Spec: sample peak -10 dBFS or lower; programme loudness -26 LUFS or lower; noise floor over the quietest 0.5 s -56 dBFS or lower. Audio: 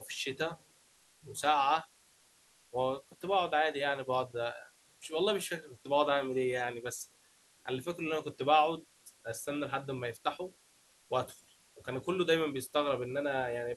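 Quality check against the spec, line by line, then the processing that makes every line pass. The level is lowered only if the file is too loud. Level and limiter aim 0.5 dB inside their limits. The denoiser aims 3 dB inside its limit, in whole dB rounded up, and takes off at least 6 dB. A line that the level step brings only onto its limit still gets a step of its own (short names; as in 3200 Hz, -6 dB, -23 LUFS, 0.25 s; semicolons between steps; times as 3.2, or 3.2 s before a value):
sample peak -13.5 dBFS: OK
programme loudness -33.5 LUFS: OK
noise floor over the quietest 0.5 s -66 dBFS: OK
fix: none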